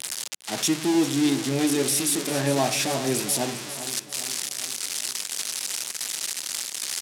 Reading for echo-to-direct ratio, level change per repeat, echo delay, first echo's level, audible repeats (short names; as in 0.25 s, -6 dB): -11.5 dB, -5.5 dB, 0.402 s, -13.0 dB, 5